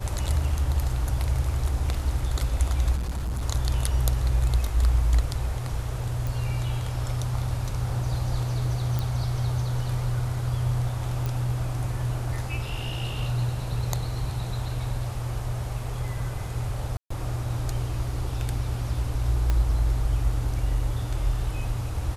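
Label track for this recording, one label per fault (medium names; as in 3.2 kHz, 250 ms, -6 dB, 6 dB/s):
2.960000	3.420000	clipped -25.5 dBFS
6.270000	6.270000	pop
8.990000	8.990000	pop
11.260000	11.260000	pop
16.970000	17.100000	dropout 134 ms
19.500000	19.500000	pop -13 dBFS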